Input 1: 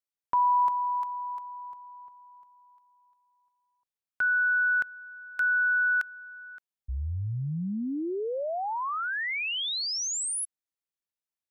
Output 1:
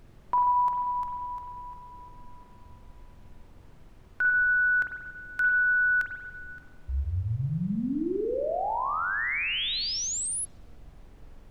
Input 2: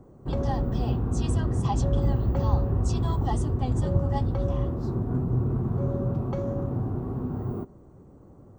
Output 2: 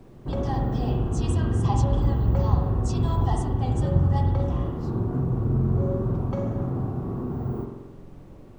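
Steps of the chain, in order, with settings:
background noise brown −50 dBFS
spring reverb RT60 1.1 s, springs 45 ms, chirp 60 ms, DRR 2.5 dB

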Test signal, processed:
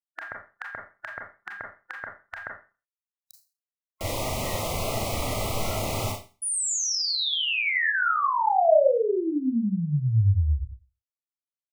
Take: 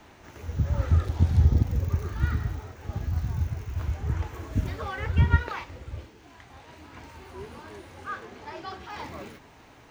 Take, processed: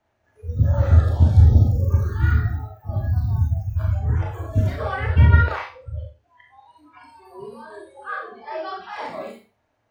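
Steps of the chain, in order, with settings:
noise reduction from a noise print of the clip's start 25 dB
graphic EQ with 15 bands 100 Hz +10 dB, 630 Hz +10 dB, 1,600 Hz +4 dB
four-comb reverb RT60 0.33 s, combs from 27 ms, DRR 0.5 dB

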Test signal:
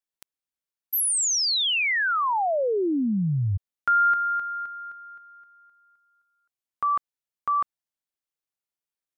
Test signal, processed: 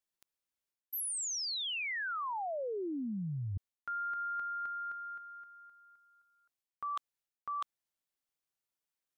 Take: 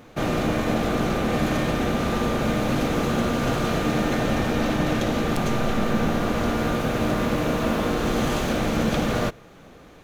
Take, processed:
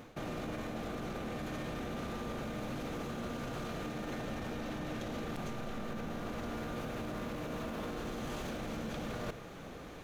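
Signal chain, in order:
brickwall limiter −20 dBFS
reversed playback
downward compressor 5 to 1, threshold −38 dBFS
reversed playback
wave folding −28 dBFS

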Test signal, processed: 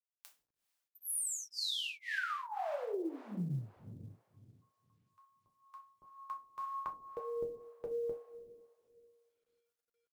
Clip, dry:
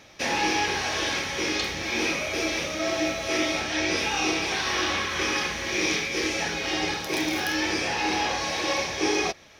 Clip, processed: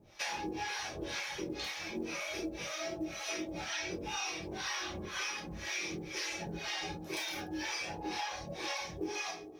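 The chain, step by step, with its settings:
reverb reduction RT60 1.4 s
coupled-rooms reverb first 0.3 s, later 2.4 s, from −18 dB, DRR −1.5 dB
two-band tremolo in antiphase 2 Hz, depth 100%, crossover 590 Hz
downward compressor 6 to 1, threshold −29 dBFS
log-companded quantiser 8 bits
level −5.5 dB

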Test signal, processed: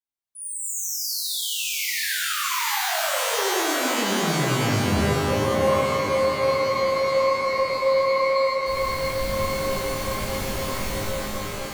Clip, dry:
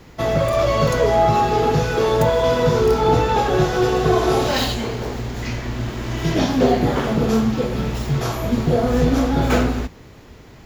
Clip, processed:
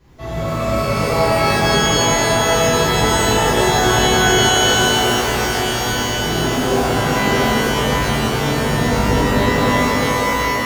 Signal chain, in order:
low-shelf EQ 140 Hz +6.5 dB
tape delay 649 ms, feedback 75%, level −4 dB, low-pass 3,400 Hz
reverb with rising layers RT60 2.9 s, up +12 semitones, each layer −2 dB, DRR −12 dB
level −16 dB

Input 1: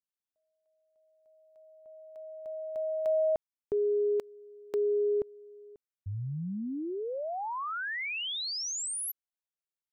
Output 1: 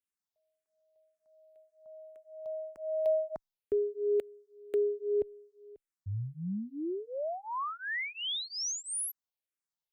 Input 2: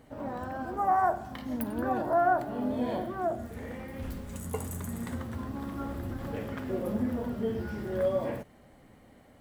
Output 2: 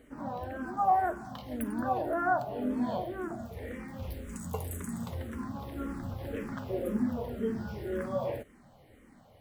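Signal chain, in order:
frequency shifter mixed with the dry sound −1.9 Hz
level +1.5 dB

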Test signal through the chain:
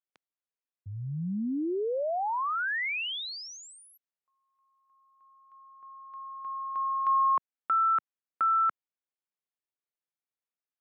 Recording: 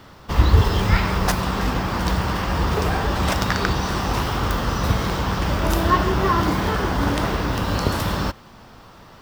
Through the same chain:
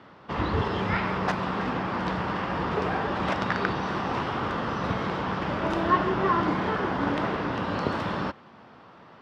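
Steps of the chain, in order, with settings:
band-pass filter 160–2,700 Hz
level −3.5 dB

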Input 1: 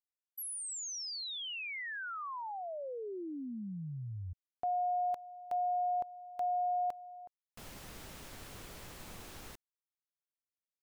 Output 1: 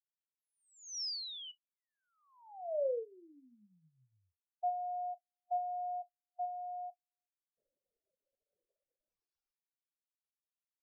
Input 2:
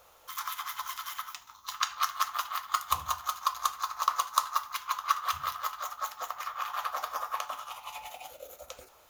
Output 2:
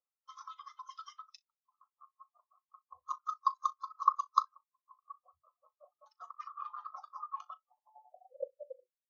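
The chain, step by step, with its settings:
reverb reduction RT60 1.2 s
low-shelf EQ 260 Hz −11 dB
in parallel at −2.5 dB: compressor whose output falls as the input rises −39 dBFS, ratio −0.5
on the sum: auto-filter low-pass square 0.33 Hz 560–5,400 Hz
transient designer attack +2 dB, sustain −2 dB
ambience of single reflections 38 ms −12 dB, 62 ms −17 dB
every bin expanded away from the loudest bin 2.5 to 1
level −5 dB

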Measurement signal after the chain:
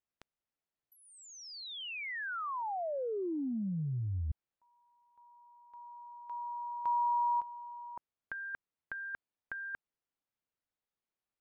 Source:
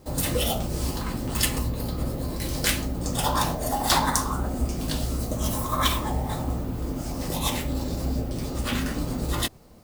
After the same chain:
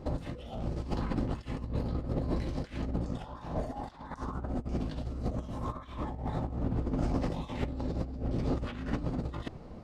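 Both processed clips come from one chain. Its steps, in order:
compressor whose output falls as the input rises −32 dBFS, ratio −0.5
head-to-tape spacing loss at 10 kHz 27 dB

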